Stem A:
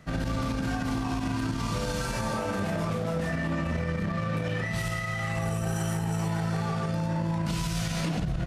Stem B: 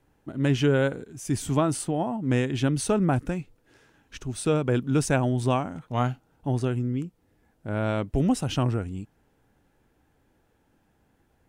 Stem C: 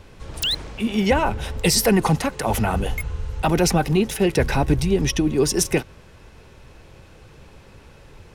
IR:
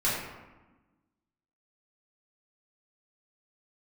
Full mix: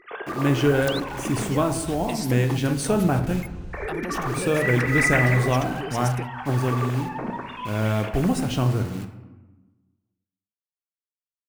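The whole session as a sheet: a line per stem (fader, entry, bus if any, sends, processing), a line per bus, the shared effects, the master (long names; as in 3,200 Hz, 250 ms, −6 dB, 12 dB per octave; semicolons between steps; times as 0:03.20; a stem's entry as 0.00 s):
−3.5 dB, 0.00 s, muted 0:01.47–0:03.73, send −13.5 dB, three sine waves on the formant tracks
−0.5 dB, 0.00 s, send −15 dB, bit reduction 7 bits
−5.5 dB, 0.45 s, no send, downward compressor 4 to 1, threshold −27 dBFS, peak gain reduction 12.5 dB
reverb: on, RT60 1.1 s, pre-delay 3 ms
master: no processing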